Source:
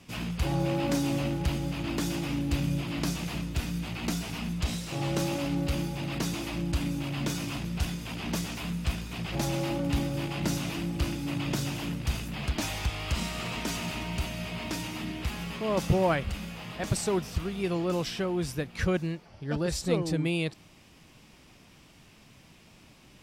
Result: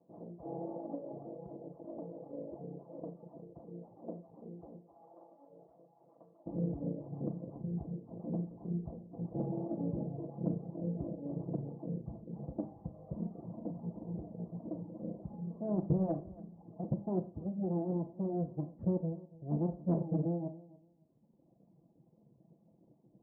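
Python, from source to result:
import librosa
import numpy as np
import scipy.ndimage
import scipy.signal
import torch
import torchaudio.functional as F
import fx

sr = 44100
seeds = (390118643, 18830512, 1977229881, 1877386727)

y = fx.lower_of_two(x, sr, delay_ms=1.0)
y = fx.highpass(y, sr, hz=fx.steps((0.0, 460.0), (4.92, 1300.0), (6.46, 180.0)), slope=12)
y = fx.dereverb_blind(y, sr, rt60_s=1.6)
y = scipy.signal.sosfilt(scipy.signal.butter(6, 640.0, 'lowpass', fs=sr, output='sos'), y)
y = y + 0.46 * np.pad(y, (int(6.0 * sr / 1000.0), 0))[:len(y)]
y = 10.0 ** (-18.0 / 20.0) * np.tanh(y / 10.0 ** (-18.0 / 20.0))
y = fx.echo_feedback(y, sr, ms=283, feedback_pct=20, wet_db=-20)
y = fx.rev_schroeder(y, sr, rt60_s=0.35, comb_ms=27, drr_db=9.0)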